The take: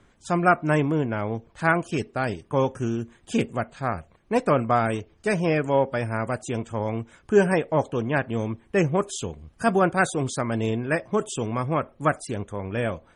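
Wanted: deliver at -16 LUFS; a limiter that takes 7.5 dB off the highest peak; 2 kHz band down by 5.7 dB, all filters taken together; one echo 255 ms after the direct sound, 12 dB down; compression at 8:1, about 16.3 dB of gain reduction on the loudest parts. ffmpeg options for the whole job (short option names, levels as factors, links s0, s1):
-af "equalizer=f=2000:t=o:g=-8.5,acompressor=threshold=0.0316:ratio=8,alimiter=level_in=1.26:limit=0.0631:level=0:latency=1,volume=0.794,aecho=1:1:255:0.251,volume=11.2"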